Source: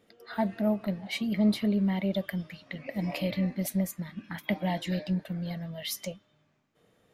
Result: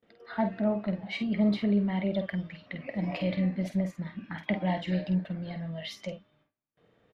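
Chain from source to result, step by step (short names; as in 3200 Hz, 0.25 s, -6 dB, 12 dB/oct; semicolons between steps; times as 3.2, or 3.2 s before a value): LPF 3200 Hz 12 dB/oct; gate with hold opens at -59 dBFS; doubler 49 ms -8 dB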